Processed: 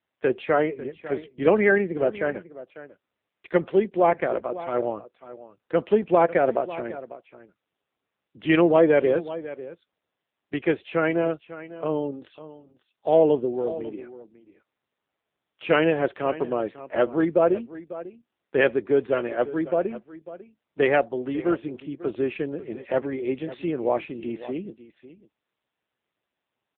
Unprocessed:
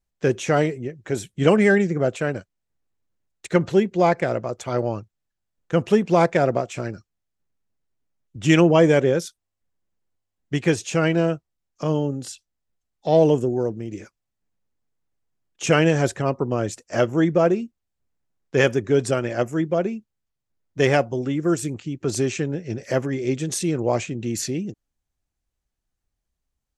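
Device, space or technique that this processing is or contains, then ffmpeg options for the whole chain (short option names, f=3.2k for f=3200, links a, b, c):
satellite phone: -af "highpass=300,lowpass=3.3k,aecho=1:1:547:0.168" -ar 8000 -c:a libopencore_amrnb -b:a 6700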